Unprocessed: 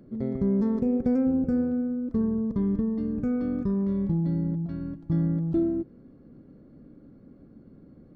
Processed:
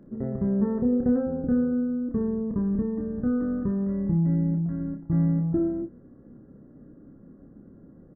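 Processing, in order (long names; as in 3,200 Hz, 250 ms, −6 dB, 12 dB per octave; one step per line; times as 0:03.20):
linear-phase brick-wall low-pass 2,000 Hz
ambience of single reflections 29 ms −4.5 dB, 59 ms −12.5 dB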